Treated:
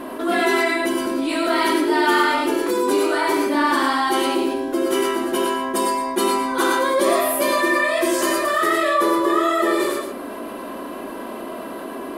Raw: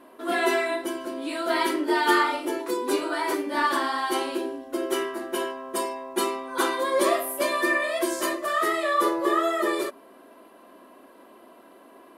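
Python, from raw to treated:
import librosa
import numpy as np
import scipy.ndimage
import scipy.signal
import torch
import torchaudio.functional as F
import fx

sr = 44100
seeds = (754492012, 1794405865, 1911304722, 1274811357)

y = fx.low_shelf(x, sr, hz=210.0, db=8.5)
y = y + 10.0 ** (-12.0 / 20.0) * np.pad(y, (int(118 * sr / 1000.0), 0))[:len(y)]
y = fx.rev_gated(y, sr, seeds[0], gate_ms=130, shape='rising', drr_db=2.0)
y = fx.env_flatten(y, sr, amount_pct=50)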